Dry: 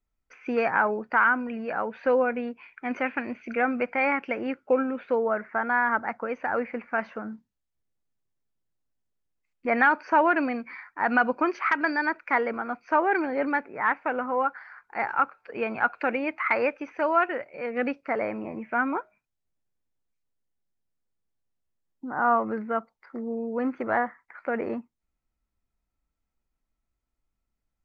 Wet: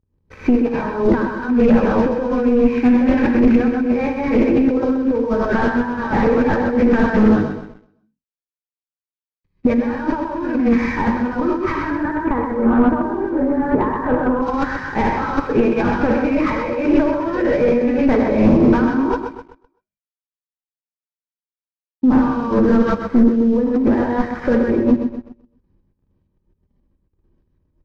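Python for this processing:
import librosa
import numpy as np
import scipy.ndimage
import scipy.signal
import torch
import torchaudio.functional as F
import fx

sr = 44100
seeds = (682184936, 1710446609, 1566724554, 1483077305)

y = fx.cvsd(x, sr, bps=32000)
y = fx.peak_eq(y, sr, hz=83.0, db=5.5, octaves=0.77)
y = fx.notch_comb(y, sr, f0_hz=700.0)
y = fx.rev_gated(y, sr, seeds[0], gate_ms=170, shape='rising', drr_db=-7.0)
y = fx.over_compress(y, sr, threshold_db=-29.0, ratio=-1.0)
y = fx.lowpass(y, sr, hz=1700.0, slope=24, at=(11.9, 14.42))
y = fx.echo_feedback(y, sr, ms=128, feedback_pct=43, wet_db=-9)
y = fx.leveller(y, sr, passes=2)
y = fx.tilt_eq(y, sr, slope=-4.5)
y = fx.doppler_dist(y, sr, depth_ms=0.16)
y = y * librosa.db_to_amplitude(-1.0)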